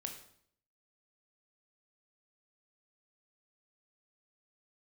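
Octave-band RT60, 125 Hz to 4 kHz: 0.75, 0.75, 0.65, 0.60, 0.55, 0.55 seconds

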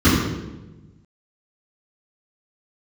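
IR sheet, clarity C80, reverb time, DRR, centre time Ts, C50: 2.5 dB, 1.1 s, −14.0 dB, 77 ms, 0.5 dB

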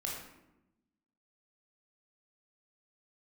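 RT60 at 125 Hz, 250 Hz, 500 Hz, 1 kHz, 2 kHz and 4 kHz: 1.3, 1.4, 1.0, 0.85, 0.75, 0.55 seconds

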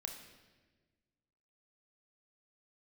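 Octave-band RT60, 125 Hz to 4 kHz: 1.9, 1.8, 1.6, 1.1, 1.3, 1.1 seconds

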